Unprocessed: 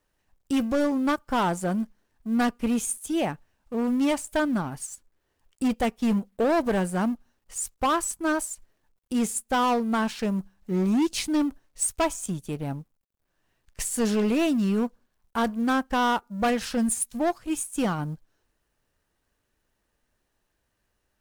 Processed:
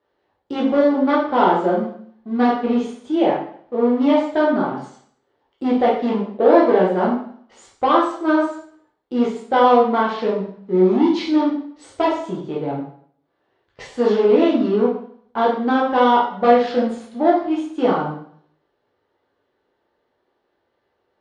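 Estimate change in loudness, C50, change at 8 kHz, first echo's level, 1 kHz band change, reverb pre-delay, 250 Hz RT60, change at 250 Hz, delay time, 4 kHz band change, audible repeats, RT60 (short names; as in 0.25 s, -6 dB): +8.0 dB, 4.5 dB, under -15 dB, none, +9.5 dB, 5 ms, 0.55 s, +6.0 dB, none, +2.5 dB, none, 0.55 s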